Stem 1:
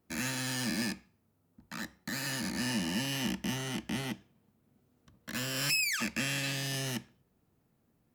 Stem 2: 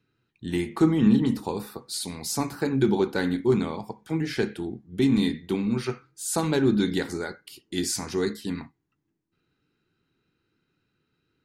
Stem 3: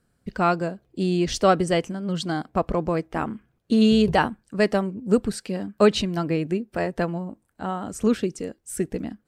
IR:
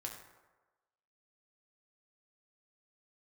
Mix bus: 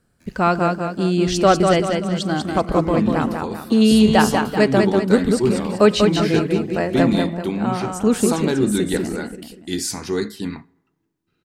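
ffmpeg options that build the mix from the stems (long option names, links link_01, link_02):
-filter_complex "[0:a]acompressor=threshold=-41dB:ratio=2.5,adelay=100,volume=-16dB[link_01];[1:a]dynaudnorm=framelen=110:gausssize=21:maxgain=9dB,adelay=1950,volume=-5.5dB,asplit=2[link_02][link_03];[link_03]volume=-18dB[link_04];[2:a]volume=2.5dB,asplit=3[link_05][link_06][link_07];[link_06]volume=-12.5dB[link_08];[link_07]volume=-3.5dB[link_09];[3:a]atrim=start_sample=2205[link_10];[link_04][link_08]amix=inputs=2:normalize=0[link_11];[link_11][link_10]afir=irnorm=-1:irlink=0[link_12];[link_09]aecho=0:1:193|386|579|772|965|1158:1|0.44|0.194|0.0852|0.0375|0.0165[link_13];[link_01][link_02][link_05][link_12][link_13]amix=inputs=5:normalize=0"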